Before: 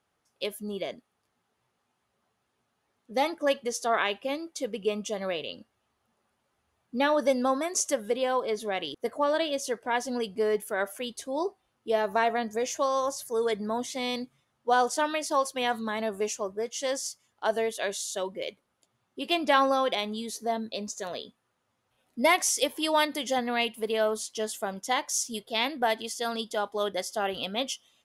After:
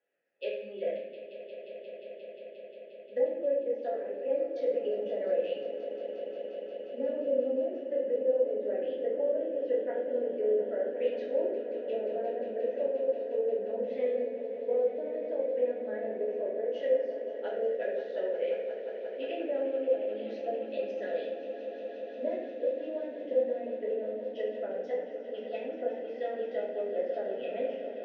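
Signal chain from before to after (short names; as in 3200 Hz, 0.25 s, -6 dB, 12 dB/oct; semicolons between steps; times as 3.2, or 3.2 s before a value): treble ducked by the level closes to 410 Hz, closed at -24.5 dBFS; steep low-pass 6200 Hz; low-pass opened by the level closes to 2600 Hz, open at -28.5 dBFS; vowel filter e; low shelf 79 Hz -11 dB; swelling echo 0.177 s, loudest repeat 5, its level -14 dB; reverb RT60 0.85 s, pre-delay 3 ms, DRR -6 dB; gain +2.5 dB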